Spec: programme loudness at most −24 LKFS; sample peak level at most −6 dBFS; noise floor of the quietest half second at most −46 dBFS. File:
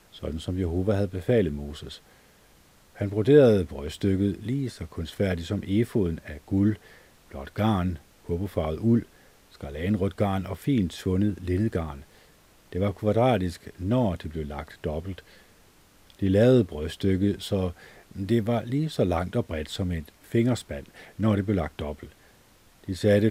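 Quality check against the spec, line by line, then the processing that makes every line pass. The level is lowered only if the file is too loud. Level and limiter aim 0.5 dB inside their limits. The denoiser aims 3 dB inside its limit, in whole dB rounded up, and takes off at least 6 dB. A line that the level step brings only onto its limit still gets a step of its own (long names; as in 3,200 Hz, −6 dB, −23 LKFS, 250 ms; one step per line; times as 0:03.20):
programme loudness −26.5 LKFS: in spec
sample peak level −5.5 dBFS: out of spec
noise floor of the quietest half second −57 dBFS: in spec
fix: brickwall limiter −6.5 dBFS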